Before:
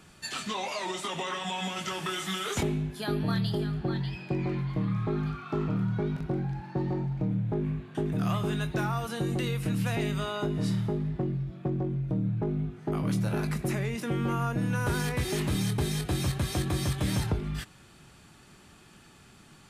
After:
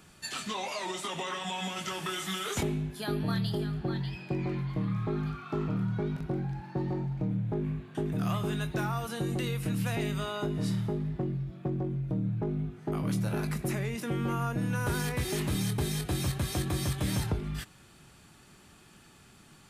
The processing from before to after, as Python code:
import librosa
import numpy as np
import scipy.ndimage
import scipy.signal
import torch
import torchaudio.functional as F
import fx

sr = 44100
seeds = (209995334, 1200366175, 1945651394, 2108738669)

y = fx.high_shelf(x, sr, hz=11000.0, db=6.5)
y = y * librosa.db_to_amplitude(-2.0)